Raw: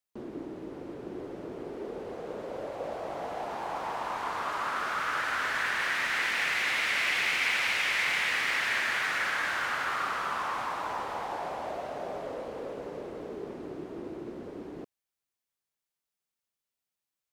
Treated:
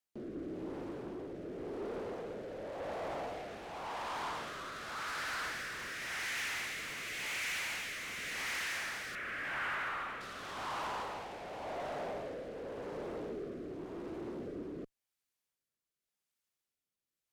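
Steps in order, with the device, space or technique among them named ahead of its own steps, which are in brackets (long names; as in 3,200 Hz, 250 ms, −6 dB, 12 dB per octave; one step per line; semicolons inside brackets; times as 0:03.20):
overdriven rotary cabinet (tube saturation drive 38 dB, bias 0.3; rotating-speaker cabinet horn 0.9 Hz)
0:09.15–0:10.21: high shelf with overshoot 3,400 Hz −11 dB, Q 1.5
level +2.5 dB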